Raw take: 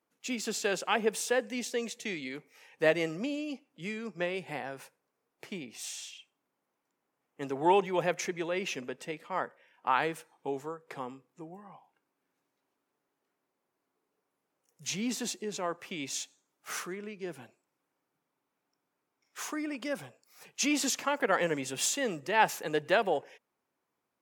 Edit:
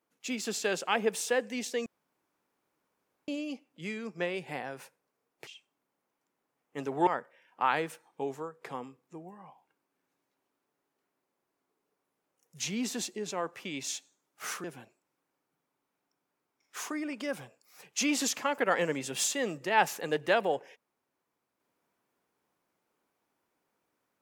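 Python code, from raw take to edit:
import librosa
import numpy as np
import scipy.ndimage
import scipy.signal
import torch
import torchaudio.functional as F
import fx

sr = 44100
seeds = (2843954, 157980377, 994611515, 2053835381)

y = fx.edit(x, sr, fx.room_tone_fill(start_s=1.86, length_s=1.42),
    fx.cut(start_s=5.47, length_s=0.64),
    fx.cut(start_s=7.71, length_s=1.62),
    fx.cut(start_s=16.9, length_s=0.36), tone=tone)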